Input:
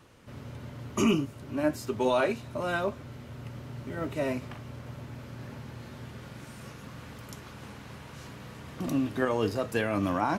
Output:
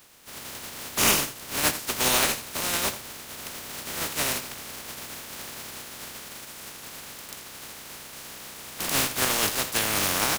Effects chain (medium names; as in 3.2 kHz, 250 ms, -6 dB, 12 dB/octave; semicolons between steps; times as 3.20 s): spectral contrast reduction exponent 0.2; hum notches 60/120 Hz; delay 83 ms -13 dB; trim +3 dB